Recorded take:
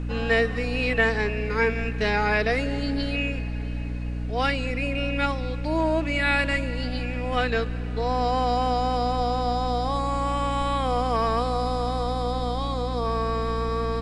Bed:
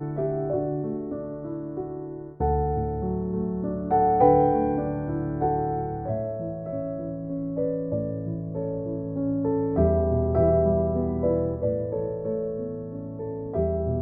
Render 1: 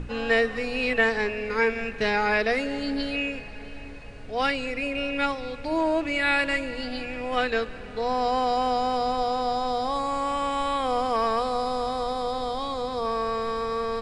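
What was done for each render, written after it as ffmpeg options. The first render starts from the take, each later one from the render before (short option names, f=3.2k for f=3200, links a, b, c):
-af "bandreject=f=60:t=h:w=6,bandreject=f=120:t=h:w=6,bandreject=f=180:t=h:w=6,bandreject=f=240:t=h:w=6,bandreject=f=300:t=h:w=6,bandreject=f=360:t=h:w=6"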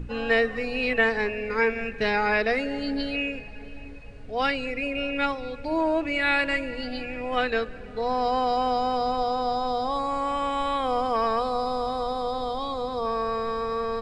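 -af "afftdn=nr=7:nf=-39"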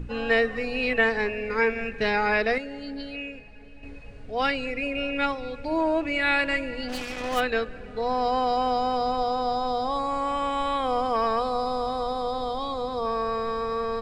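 -filter_complex "[0:a]asplit=3[a][b][c];[a]afade=t=out:st=6.88:d=0.02[d];[b]acrusher=bits=4:mix=0:aa=0.5,afade=t=in:st=6.88:d=0.02,afade=t=out:st=7.39:d=0.02[e];[c]afade=t=in:st=7.39:d=0.02[f];[d][e][f]amix=inputs=3:normalize=0,asplit=3[g][h][i];[g]atrim=end=2.582[j];[h]atrim=start=2.578:end=3.832,asetpts=PTS-STARTPTS,volume=-7dB[k];[i]atrim=start=3.828[l];[j][k]acrossfade=d=0.004:c1=hsin:c2=hsin[m];[m][l]acrossfade=d=0.004:c1=hsin:c2=hsin"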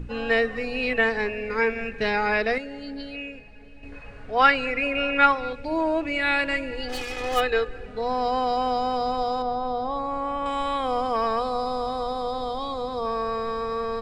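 -filter_complex "[0:a]asettb=1/sr,asplit=3[a][b][c];[a]atrim=end=3.924[d];[b]atrim=start=3.92:end=5.53,asetpts=PTS-STARTPTS,afade=t=in:d=0.004:c=qsin,afade=t=out:st=1.606:d=0.004:c=qsin,equalizer=f=1.3k:w=0.85:g=11.5[e];[c]atrim=start=5.526[f];[d][e]acrossfade=d=0.004:c1=hsin:c2=qsin[g];[g][f]acrossfade=d=0.004:c1=qsin:c2=hsin,asettb=1/sr,asplit=3[h][i][j];[h]atrim=end=6.714[k];[i]atrim=start=6.71:end=7.86,asetpts=PTS-STARTPTS,afade=t=in:d=0.004:c=qsin,afade=t=out:st=1.146:d=0.004:c=qsin,aecho=1:1:2.4:0.64,atrim=end_sample=50715[l];[j]atrim=start=7.856[m];[k][l]acrossfade=d=0.004:c1=hsin:c2=qsin[n];[n][m]acrossfade=d=0.004:c1=qsin:c2=hsin,asettb=1/sr,asplit=3[o][p][q];[o]atrim=end=9.424[r];[p]atrim=start=9.42:end=10.46,asetpts=PTS-STARTPTS,afade=t=in:d=0.004:c=qsin,afade=t=out:st=1.036:d=0.004:c=qsin,lowpass=f=1.6k:p=1[s];[q]atrim=start=10.456[t];[r][s]acrossfade=d=0.004:c1=hsin:c2=qsin[u];[u][t]acrossfade=d=0.004:c1=qsin:c2=hsin"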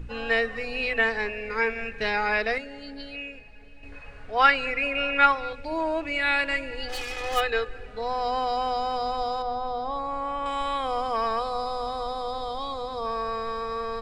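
-af "equalizer=f=250:t=o:w=2.5:g=-6,bandreject=f=50:t=h:w=6,bandreject=f=100:t=h:w=6,bandreject=f=150:t=h:w=6,bandreject=f=200:t=h:w=6,bandreject=f=250:t=h:w=6"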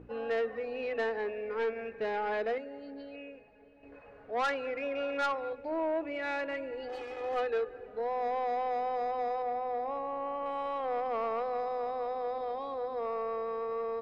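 -af "bandpass=f=480:t=q:w=1.1:csg=0,asoftclip=type=tanh:threshold=-25.5dB"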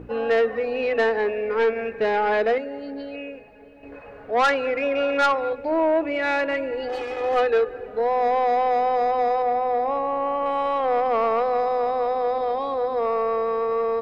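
-af "volume=11.5dB"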